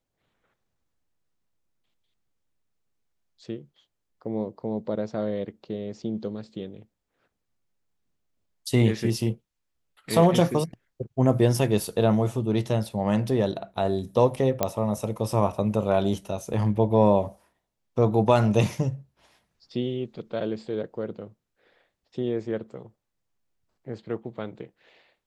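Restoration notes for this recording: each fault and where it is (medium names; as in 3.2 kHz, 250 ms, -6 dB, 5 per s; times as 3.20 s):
14.63 s: pop -8 dBFS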